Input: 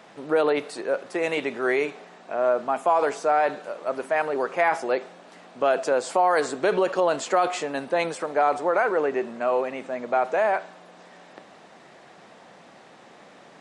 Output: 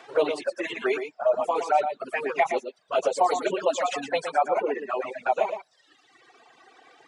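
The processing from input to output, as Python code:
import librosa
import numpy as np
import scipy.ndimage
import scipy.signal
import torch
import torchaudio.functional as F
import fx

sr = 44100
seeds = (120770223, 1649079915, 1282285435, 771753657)

p1 = fx.stretch_vocoder_free(x, sr, factor=0.52)
p2 = fx.weighting(p1, sr, curve='A')
p3 = fx.dereverb_blind(p2, sr, rt60_s=1.7)
p4 = fx.bass_treble(p3, sr, bass_db=7, treble_db=-1)
p5 = fx.env_flanger(p4, sr, rest_ms=2.8, full_db=-25.5)
p6 = fx.dereverb_blind(p5, sr, rt60_s=0.84)
p7 = p6 + fx.echo_single(p6, sr, ms=116, db=-8.0, dry=0)
y = p7 * 10.0 ** (7.0 / 20.0)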